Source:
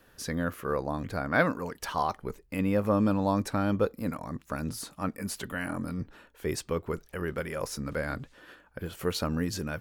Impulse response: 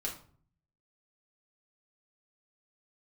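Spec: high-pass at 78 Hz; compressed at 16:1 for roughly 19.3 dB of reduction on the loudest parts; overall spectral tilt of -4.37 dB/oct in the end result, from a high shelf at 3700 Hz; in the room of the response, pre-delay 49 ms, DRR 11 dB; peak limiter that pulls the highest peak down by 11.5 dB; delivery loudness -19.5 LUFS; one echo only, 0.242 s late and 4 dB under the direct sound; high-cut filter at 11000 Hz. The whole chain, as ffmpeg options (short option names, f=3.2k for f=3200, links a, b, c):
-filter_complex "[0:a]highpass=78,lowpass=11k,highshelf=f=3.7k:g=5,acompressor=threshold=-38dB:ratio=16,alimiter=level_in=12.5dB:limit=-24dB:level=0:latency=1,volume=-12.5dB,aecho=1:1:242:0.631,asplit=2[a][b];[1:a]atrim=start_sample=2205,adelay=49[c];[b][c]afir=irnorm=-1:irlink=0,volume=-12.5dB[d];[a][d]amix=inputs=2:normalize=0,volume=26.5dB"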